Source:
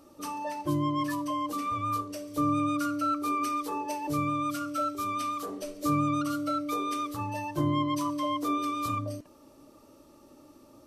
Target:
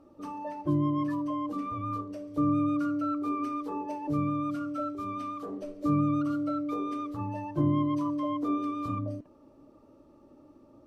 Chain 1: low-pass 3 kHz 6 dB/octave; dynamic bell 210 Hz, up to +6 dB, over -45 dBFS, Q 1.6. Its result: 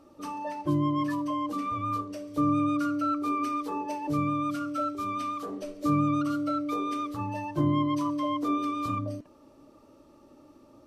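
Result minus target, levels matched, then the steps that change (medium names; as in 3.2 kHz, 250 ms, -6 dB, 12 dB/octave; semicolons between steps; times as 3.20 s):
4 kHz band +8.0 dB
change: low-pass 790 Hz 6 dB/octave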